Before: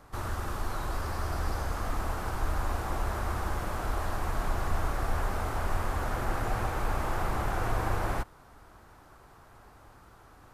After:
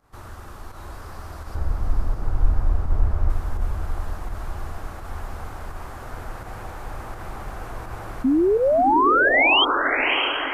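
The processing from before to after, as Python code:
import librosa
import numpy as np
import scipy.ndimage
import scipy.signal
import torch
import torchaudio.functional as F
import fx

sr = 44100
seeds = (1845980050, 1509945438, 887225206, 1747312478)

p1 = fx.tilt_eq(x, sr, slope=-3.5, at=(1.55, 3.3))
p2 = fx.spec_paint(p1, sr, seeds[0], shape='rise', start_s=8.24, length_s=1.41, low_hz=250.0, high_hz=3300.0, level_db=-12.0)
p3 = fx.volume_shaper(p2, sr, bpm=84, per_beat=1, depth_db=-11, release_ms=91.0, shape='fast start')
p4 = p3 + fx.echo_diffused(p3, sr, ms=639, feedback_pct=52, wet_db=-4.5, dry=0)
y = p4 * 10.0 ** (-5.5 / 20.0)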